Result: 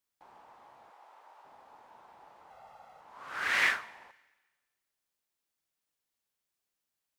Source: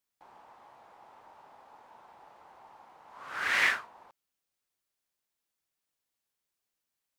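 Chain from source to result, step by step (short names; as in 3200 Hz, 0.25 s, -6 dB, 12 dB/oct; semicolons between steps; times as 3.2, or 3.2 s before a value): 0.9–1.45 HPF 500 Hz 12 dB/oct; 2.5–3.01 comb 1.5 ms, depth 77%; Schroeder reverb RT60 1.3 s, DRR 19.5 dB; gain -1 dB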